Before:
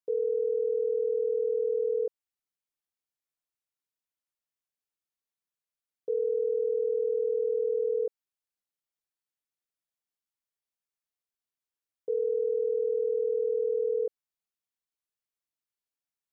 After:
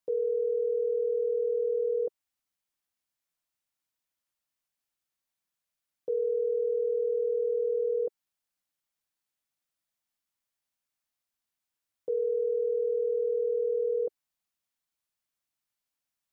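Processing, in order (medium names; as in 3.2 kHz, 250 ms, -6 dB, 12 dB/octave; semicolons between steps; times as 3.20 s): peaking EQ 420 Hz -10 dB 0.28 oct; trim +5 dB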